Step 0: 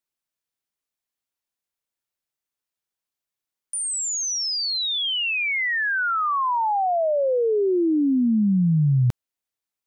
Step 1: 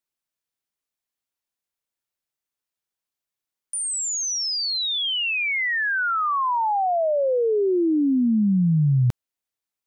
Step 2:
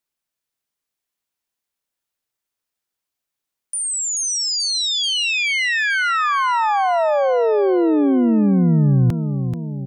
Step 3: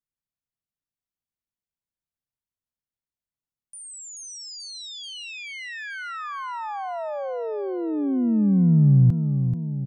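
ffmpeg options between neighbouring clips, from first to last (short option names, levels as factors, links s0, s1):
-af anull
-af "aecho=1:1:434|868|1302|1736|2170|2604|3038:0.398|0.227|0.129|0.0737|0.042|0.024|0.0137,volume=1.5"
-af "firequalizer=gain_entry='entry(140,0);entry(350,-12);entry(2300,-17)':delay=0.05:min_phase=1"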